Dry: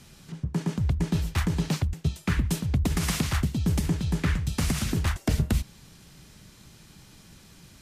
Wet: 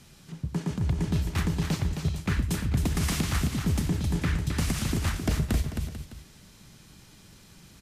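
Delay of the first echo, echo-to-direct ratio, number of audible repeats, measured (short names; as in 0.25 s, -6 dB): 89 ms, -5.0 dB, 5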